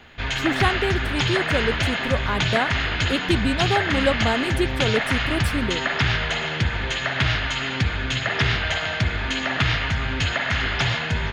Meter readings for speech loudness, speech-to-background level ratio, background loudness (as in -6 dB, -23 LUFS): -26.0 LUFS, -3.0 dB, -23.0 LUFS